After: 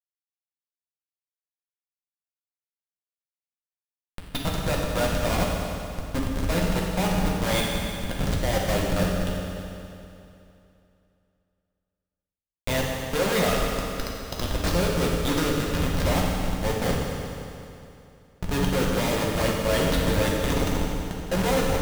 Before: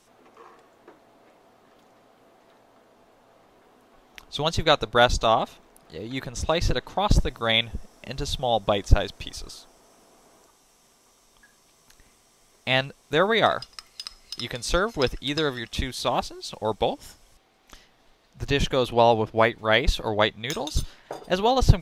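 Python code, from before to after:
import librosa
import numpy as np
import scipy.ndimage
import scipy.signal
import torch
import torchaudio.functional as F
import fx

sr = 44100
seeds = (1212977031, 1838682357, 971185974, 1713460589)

y = fx.delta_hold(x, sr, step_db=-19.0, at=(4.37, 5.38), fade=0.02)
y = fx.schmitt(y, sr, flips_db=-25.0)
y = fx.rev_fdn(y, sr, rt60_s=2.8, lf_ratio=1.0, hf_ratio=0.9, size_ms=33.0, drr_db=-3.0)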